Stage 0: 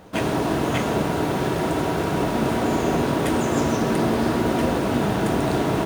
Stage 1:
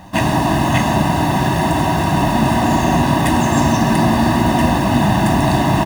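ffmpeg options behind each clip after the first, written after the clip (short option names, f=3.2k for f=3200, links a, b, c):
-af "aecho=1:1:1.1:0.97,volume=5dB"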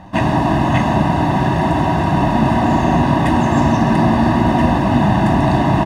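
-af "aemphasis=mode=reproduction:type=75fm"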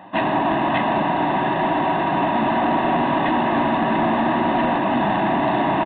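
-af "highpass=300,aresample=8000,asoftclip=type=tanh:threshold=-12dB,aresample=44100"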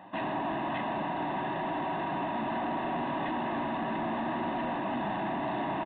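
-af "alimiter=limit=-18.5dB:level=0:latency=1,volume=-8dB"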